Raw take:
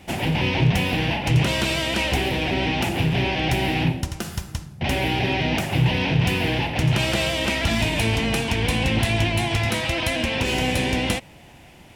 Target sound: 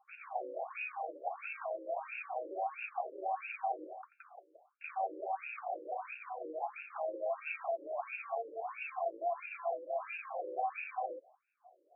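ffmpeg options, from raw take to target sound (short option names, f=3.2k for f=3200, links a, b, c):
-filter_complex "[0:a]adynamicsmooth=sensitivity=3.5:basefreq=770,asplit=3[a][b][c];[a]bandpass=f=730:t=q:w=8,volume=0dB[d];[b]bandpass=f=1.09k:t=q:w=8,volume=-6dB[e];[c]bandpass=f=2.44k:t=q:w=8,volume=-9dB[f];[d][e][f]amix=inputs=3:normalize=0,afftfilt=real='re*between(b*sr/1024,400*pow(2000/400,0.5+0.5*sin(2*PI*1.5*pts/sr))/1.41,400*pow(2000/400,0.5+0.5*sin(2*PI*1.5*pts/sr))*1.41)':imag='im*between(b*sr/1024,400*pow(2000/400,0.5+0.5*sin(2*PI*1.5*pts/sr))/1.41,400*pow(2000/400,0.5+0.5*sin(2*PI*1.5*pts/sr))*1.41)':win_size=1024:overlap=0.75,volume=1.5dB"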